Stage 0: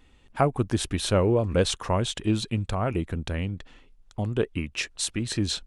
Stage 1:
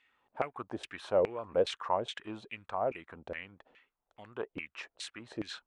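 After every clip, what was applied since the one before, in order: LFO band-pass saw down 2.4 Hz 480–2400 Hz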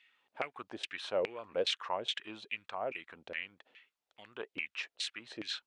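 frequency weighting D; trim -5 dB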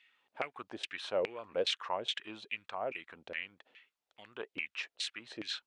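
no audible change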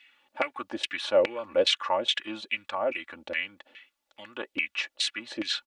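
comb 3.5 ms, depth 80%; trim +7 dB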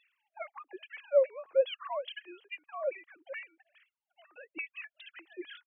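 formants replaced by sine waves; trim -5.5 dB

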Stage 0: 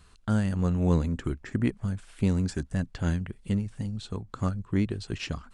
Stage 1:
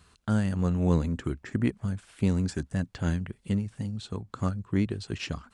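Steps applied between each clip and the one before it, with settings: high-pass 65 Hz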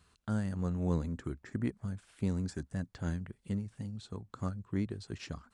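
dynamic bell 2.8 kHz, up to -6 dB, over -58 dBFS, Q 2.4; trim -7.5 dB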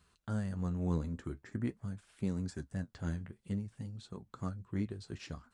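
flange 0.47 Hz, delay 4.6 ms, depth 8.9 ms, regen -54%; trim +1.5 dB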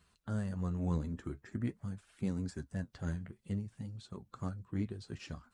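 coarse spectral quantiser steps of 15 dB

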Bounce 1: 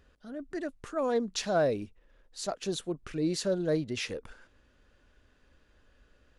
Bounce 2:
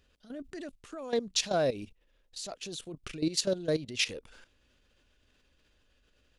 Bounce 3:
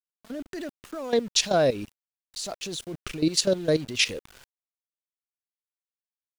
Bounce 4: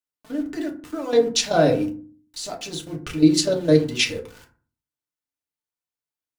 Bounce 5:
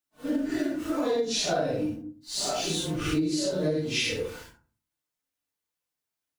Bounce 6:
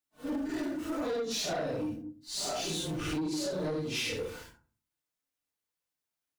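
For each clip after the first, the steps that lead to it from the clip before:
resonant high shelf 2.1 kHz +6 dB, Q 1.5; level held to a coarse grid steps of 14 dB; trim +2 dB
small samples zeroed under -49.5 dBFS; trim +6.5 dB
FDN reverb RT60 0.41 s, low-frequency decay 1.5×, high-frequency decay 0.45×, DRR -1 dB
phase randomisation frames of 200 ms; compression 16:1, threshold -28 dBFS, peak gain reduction 17.5 dB; trim +4.5 dB
saturation -26 dBFS, distortion -13 dB; trim -2.5 dB

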